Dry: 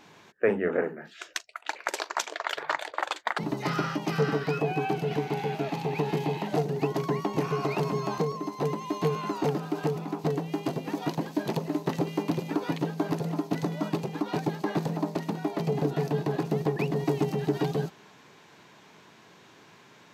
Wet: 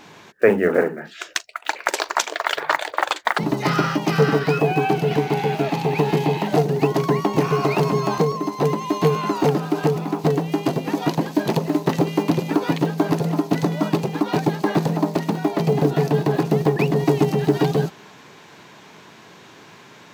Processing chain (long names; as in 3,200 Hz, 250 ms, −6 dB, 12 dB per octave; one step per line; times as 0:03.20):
one scale factor per block 7 bits
level +9 dB